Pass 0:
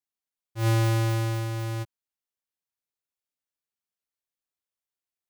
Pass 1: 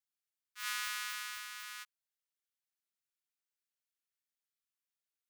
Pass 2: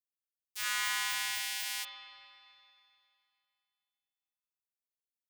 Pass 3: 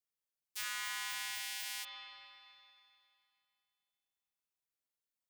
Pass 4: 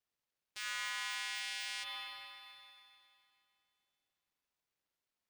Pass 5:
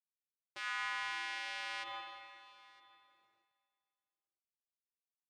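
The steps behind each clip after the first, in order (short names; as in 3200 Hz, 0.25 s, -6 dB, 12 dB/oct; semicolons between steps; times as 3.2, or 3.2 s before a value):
steep high-pass 1200 Hz 48 dB/oct; gain -2.5 dB
differentiator; sample leveller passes 5; spring tank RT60 2.6 s, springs 39/57 ms, chirp 60 ms, DRR 2.5 dB
compressor, threshold -35 dBFS, peak gain reduction 7.5 dB
median filter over 5 samples; limiter -35 dBFS, peak gain reduction 7.5 dB; gain +6 dB
G.711 law mismatch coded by A; band-pass 540 Hz, Q 0.77; echo 0.96 s -23 dB; gain +12.5 dB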